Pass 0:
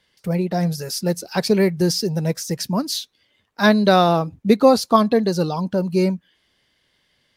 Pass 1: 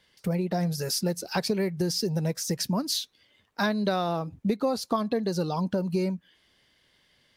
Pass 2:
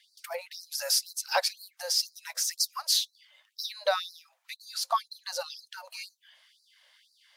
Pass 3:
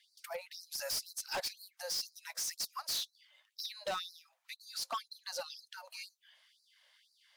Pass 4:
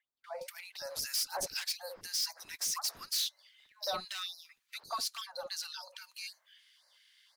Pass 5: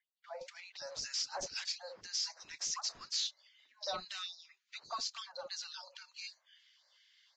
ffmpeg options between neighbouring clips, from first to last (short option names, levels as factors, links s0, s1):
-af "acompressor=threshold=0.0631:ratio=6"
-af "afftfilt=real='re*gte(b*sr/1024,490*pow(4000/490,0.5+0.5*sin(2*PI*2*pts/sr)))':imag='im*gte(b*sr/1024,490*pow(4000/490,0.5+0.5*sin(2*PI*2*pts/sr)))':win_size=1024:overlap=0.75,volume=1.58"
-af "asoftclip=type=hard:threshold=0.0422,volume=0.531"
-filter_complex "[0:a]acrossover=split=500|1500[s0][s1][s2];[s0]adelay=60[s3];[s2]adelay=240[s4];[s3][s1][s4]amix=inputs=3:normalize=0,volume=1.5"
-af "volume=0.668" -ar 16000 -c:a libvorbis -b:a 32k